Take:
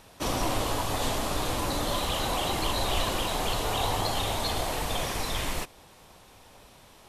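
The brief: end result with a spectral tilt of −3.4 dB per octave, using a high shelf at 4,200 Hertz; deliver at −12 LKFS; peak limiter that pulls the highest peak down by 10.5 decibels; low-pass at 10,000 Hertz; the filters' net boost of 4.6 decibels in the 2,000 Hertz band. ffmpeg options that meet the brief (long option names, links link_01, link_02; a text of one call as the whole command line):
ffmpeg -i in.wav -af "lowpass=10000,equalizer=frequency=2000:width_type=o:gain=6.5,highshelf=frequency=4200:gain=-3,volume=21dB,alimiter=limit=-3dB:level=0:latency=1" out.wav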